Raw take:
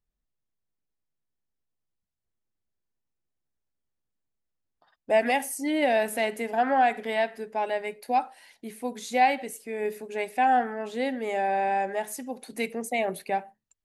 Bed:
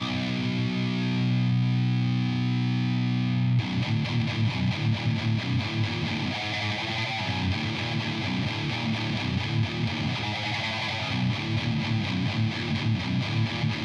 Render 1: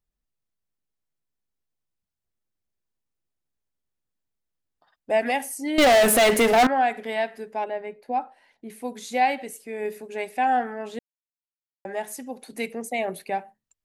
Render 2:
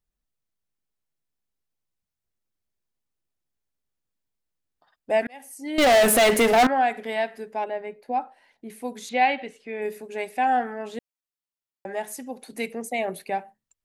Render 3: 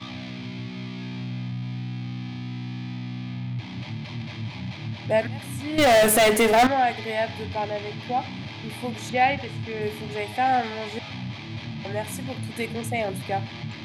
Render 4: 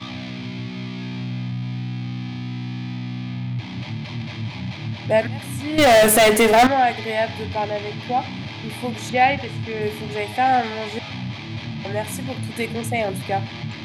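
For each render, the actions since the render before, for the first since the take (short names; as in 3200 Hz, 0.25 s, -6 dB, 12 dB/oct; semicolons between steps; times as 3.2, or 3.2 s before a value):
5.78–6.67 sample leveller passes 5; 7.64–8.7 LPF 1100 Hz 6 dB/oct; 10.99–11.85 mute
5.27–5.95 fade in; 9.09–9.82 synth low-pass 3200 Hz, resonance Q 1.5
add bed -7.5 dB
gain +4 dB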